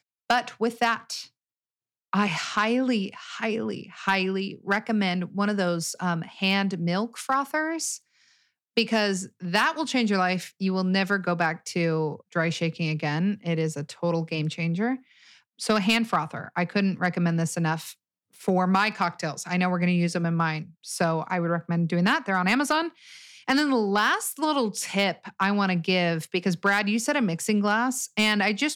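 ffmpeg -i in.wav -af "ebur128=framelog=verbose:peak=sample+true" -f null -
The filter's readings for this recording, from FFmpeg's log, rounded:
Integrated loudness:
  I:         -25.5 LUFS
  Threshold: -35.8 LUFS
Loudness range:
  LRA:         2.9 LU
  Threshold: -45.9 LUFS
  LRA low:   -27.4 LUFS
  LRA high:  -24.5 LUFS
Sample peak:
  Peak:      -12.8 dBFS
True peak:
  Peak:      -12.2 dBFS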